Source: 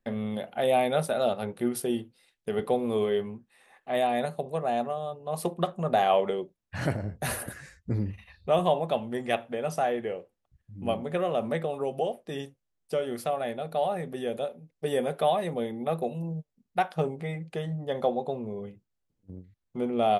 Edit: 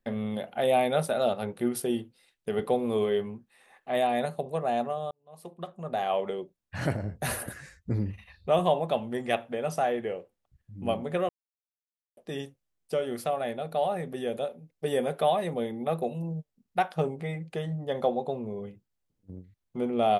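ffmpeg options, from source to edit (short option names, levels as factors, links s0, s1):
-filter_complex "[0:a]asplit=4[s0][s1][s2][s3];[s0]atrim=end=5.11,asetpts=PTS-STARTPTS,afade=t=out:st=5.106:d=0.004:c=hsin[s4];[s1]atrim=start=5.11:end=11.29,asetpts=PTS-STARTPTS,afade=t=in:d=1.83,afade=t=out:st=6.176:d=0.004:c=hsin[s5];[s2]atrim=start=11.29:end=12.17,asetpts=PTS-STARTPTS,volume=0[s6];[s3]atrim=start=12.17,asetpts=PTS-STARTPTS,afade=t=in:d=0.004:c=hsin[s7];[s4][s5][s6][s7]concat=n=4:v=0:a=1"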